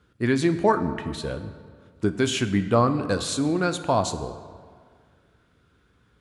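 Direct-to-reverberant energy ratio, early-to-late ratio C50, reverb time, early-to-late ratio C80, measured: 9.5 dB, 11.0 dB, 1.9 s, 12.5 dB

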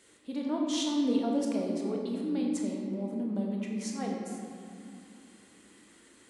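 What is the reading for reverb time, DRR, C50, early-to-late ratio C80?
2.4 s, -1.0 dB, 1.0 dB, 2.5 dB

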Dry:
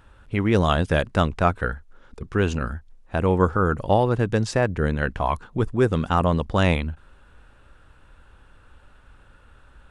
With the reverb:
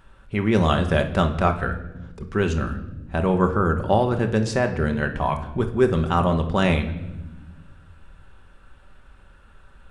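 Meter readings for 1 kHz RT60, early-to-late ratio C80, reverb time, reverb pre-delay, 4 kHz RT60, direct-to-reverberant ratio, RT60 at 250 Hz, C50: 0.85 s, 14.0 dB, 1.0 s, 5 ms, 0.85 s, 5.0 dB, 1.9 s, 11.0 dB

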